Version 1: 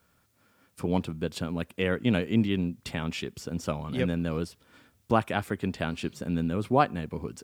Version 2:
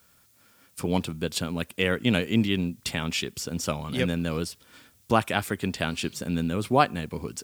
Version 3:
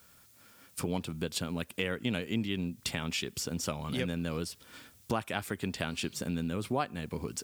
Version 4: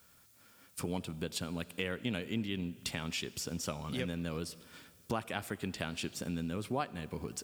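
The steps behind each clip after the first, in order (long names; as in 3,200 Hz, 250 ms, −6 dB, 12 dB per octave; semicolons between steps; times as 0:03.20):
high-shelf EQ 2,600 Hz +11 dB; level +1 dB
downward compressor 2.5 to 1, threshold −34 dBFS, peak gain reduction 13.5 dB; level +1 dB
convolution reverb RT60 2.1 s, pre-delay 20 ms, DRR 18 dB; level −3.5 dB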